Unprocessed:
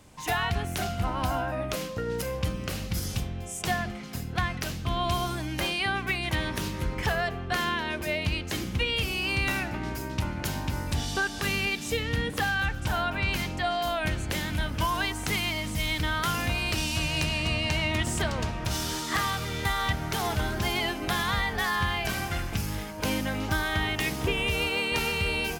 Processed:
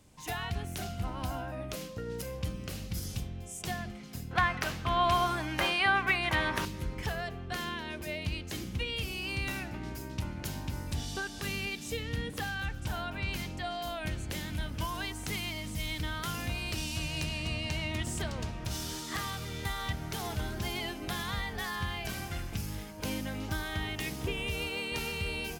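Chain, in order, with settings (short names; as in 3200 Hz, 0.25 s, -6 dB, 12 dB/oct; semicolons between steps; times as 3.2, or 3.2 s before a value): bell 1200 Hz -5 dB 2.5 oct, from 4.31 s +10 dB, from 6.65 s -4.5 dB; gain -5.5 dB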